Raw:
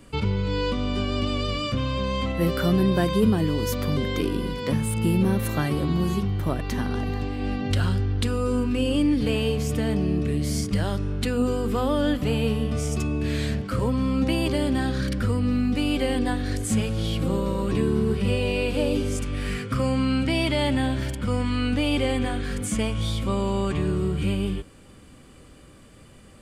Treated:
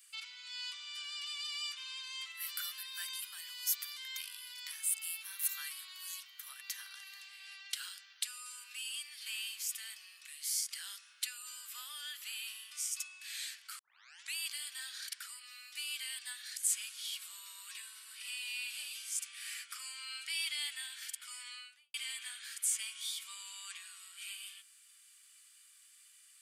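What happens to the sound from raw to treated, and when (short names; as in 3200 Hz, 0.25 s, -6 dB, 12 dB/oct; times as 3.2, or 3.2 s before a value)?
13.79 tape start 0.57 s
21.42–21.94 studio fade out
whole clip: HPF 1400 Hz 24 dB/oct; differentiator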